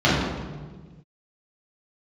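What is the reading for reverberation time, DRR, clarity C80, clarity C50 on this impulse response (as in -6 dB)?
1.4 s, -9.5 dB, 2.0 dB, -0.5 dB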